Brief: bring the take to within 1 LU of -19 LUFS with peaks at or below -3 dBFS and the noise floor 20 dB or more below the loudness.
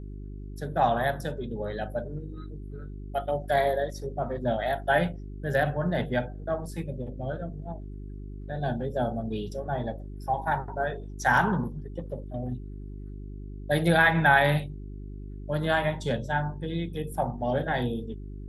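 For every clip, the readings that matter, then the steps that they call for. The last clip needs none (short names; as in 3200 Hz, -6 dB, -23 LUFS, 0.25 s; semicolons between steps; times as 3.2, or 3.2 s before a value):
hum 50 Hz; harmonics up to 400 Hz; hum level -36 dBFS; loudness -28.5 LUFS; peak -8.0 dBFS; loudness target -19.0 LUFS
-> de-hum 50 Hz, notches 8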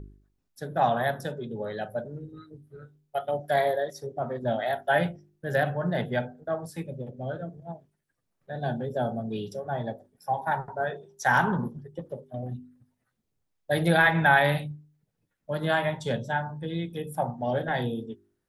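hum none; loudness -28.5 LUFS; peak -8.0 dBFS; loudness target -19.0 LUFS
-> gain +9.5 dB; limiter -3 dBFS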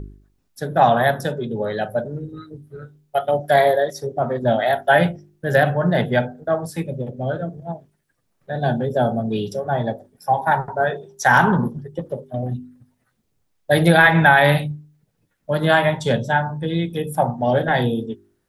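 loudness -19.5 LUFS; peak -3.0 dBFS; noise floor -69 dBFS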